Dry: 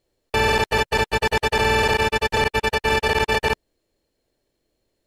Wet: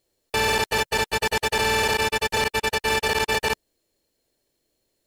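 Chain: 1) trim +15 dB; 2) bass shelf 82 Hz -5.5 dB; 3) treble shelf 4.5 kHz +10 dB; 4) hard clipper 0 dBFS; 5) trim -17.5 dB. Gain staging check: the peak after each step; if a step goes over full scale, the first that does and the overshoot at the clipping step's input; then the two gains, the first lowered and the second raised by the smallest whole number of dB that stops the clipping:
+7.0 dBFS, +6.5 dBFS, +8.0 dBFS, 0.0 dBFS, -17.5 dBFS; step 1, 8.0 dB; step 1 +7 dB, step 5 -9.5 dB

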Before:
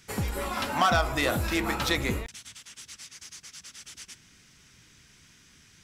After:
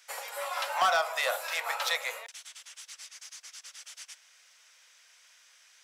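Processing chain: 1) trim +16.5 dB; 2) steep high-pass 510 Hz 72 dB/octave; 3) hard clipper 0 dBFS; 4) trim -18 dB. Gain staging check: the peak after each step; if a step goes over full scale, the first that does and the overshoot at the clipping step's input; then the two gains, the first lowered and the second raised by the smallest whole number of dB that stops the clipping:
+5.5 dBFS, +5.5 dBFS, 0.0 dBFS, -18.0 dBFS; step 1, 5.5 dB; step 1 +10.5 dB, step 4 -12 dB

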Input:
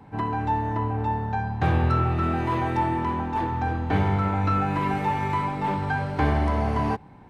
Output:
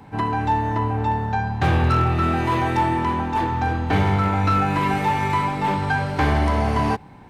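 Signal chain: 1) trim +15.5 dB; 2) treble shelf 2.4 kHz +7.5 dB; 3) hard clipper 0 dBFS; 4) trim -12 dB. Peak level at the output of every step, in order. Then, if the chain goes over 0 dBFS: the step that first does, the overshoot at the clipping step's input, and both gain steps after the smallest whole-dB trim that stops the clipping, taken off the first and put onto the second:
+5.5 dBFS, +6.0 dBFS, 0.0 dBFS, -12.0 dBFS; step 1, 6.0 dB; step 1 +9.5 dB, step 4 -6 dB

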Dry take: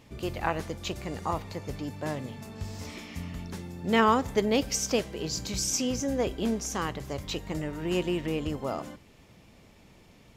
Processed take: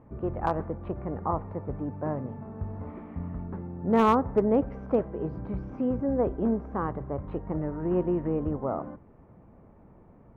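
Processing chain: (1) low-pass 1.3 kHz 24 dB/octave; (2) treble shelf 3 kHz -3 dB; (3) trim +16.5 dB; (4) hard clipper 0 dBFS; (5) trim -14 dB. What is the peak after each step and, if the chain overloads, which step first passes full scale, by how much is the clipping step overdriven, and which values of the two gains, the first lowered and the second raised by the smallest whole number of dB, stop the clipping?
-11.5 dBFS, -11.5 dBFS, +5.0 dBFS, 0.0 dBFS, -14.0 dBFS; step 3, 5.0 dB; step 3 +11.5 dB, step 5 -9 dB

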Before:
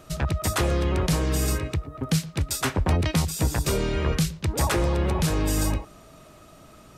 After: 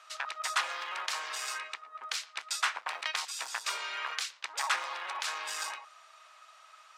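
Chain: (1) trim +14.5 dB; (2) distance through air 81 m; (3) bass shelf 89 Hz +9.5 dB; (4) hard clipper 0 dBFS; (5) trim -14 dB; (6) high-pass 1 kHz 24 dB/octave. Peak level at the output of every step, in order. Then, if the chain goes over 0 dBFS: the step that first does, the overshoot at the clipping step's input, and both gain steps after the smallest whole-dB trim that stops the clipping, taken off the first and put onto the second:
+1.5 dBFS, +1.0 dBFS, +6.0 dBFS, 0.0 dBFS, -14.0 dBFS, -15.0 dBFS; step 1, 6.0 dB; step 1 +8.5 dB, step 5 -8 dB

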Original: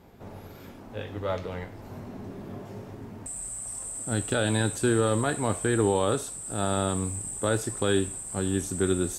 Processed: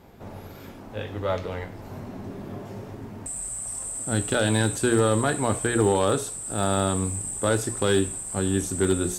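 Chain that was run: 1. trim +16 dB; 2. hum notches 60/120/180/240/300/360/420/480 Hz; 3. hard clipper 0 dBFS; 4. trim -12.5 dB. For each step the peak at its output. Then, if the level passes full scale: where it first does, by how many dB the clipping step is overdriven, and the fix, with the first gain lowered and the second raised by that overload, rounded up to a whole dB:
+5.0 dBFS, +4.5 dBFS, 0.0 dBFS, -12.5 dBFS; step 1, 4.5 dB; step 1 +11 dB, step 4 -7.5 dB

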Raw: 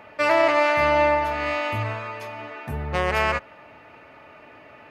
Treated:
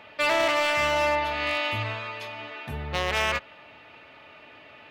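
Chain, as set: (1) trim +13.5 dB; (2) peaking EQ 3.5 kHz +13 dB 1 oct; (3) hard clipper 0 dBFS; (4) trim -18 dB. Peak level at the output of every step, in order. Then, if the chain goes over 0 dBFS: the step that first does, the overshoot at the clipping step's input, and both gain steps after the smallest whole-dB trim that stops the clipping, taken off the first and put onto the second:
+5.0 dBFS, +8.5 dBFS, 0.0 dBFS, -18.0 dBFS; step 1, 8.5 dB; step 1 +4.5 dB, step 4 -9 dB

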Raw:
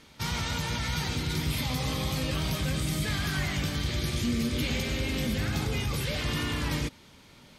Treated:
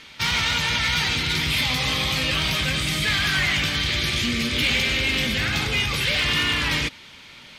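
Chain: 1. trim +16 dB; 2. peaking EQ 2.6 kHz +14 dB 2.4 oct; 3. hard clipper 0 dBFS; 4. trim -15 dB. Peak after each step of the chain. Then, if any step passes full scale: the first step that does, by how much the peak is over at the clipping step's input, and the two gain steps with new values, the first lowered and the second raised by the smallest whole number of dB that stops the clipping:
-1.0 dBFS, +7.5 dBFS, 0.0 dBFS, -15.0 dBFS; step 2, 7.5 dB; step 1 +8 dB, step 4 -7 dB

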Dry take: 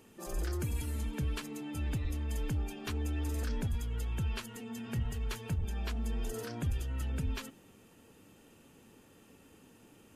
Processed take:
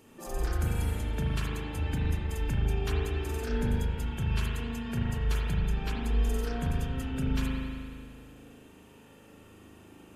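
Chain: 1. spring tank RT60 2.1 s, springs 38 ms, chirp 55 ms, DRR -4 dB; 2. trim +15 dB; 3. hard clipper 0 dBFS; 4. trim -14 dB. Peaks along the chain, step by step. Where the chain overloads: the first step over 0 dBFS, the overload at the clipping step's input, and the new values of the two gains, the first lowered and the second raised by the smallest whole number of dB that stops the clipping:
-17.5 dBFS, -2.5 dBFS, -2.5 dBFS, -16.5 dBFS; nothing clips

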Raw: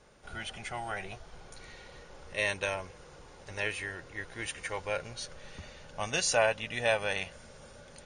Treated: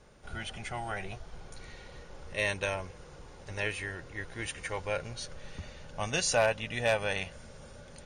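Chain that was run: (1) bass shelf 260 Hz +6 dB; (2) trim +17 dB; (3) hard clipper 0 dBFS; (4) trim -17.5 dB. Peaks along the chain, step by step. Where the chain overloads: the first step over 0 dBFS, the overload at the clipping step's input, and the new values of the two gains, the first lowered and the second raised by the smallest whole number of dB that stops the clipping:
-12.0 dBFS, +5.0 dBFS, 0.0 dBFS, -17.5 dBFS; step 2, 5.0 dB; step 2 +12 dB, step 4 -12.5 dB

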